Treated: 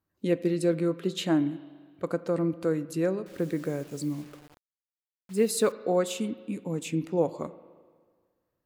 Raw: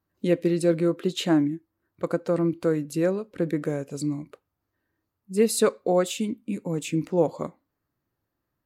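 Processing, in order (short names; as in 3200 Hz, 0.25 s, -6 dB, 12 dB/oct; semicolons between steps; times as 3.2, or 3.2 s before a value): spring tank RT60 1.7 s, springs 37/42 ms, chirp 45 ms, DRR 15.5 dB; 3.26–5.72 requantised 8-bit, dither none; gain -3.5 dB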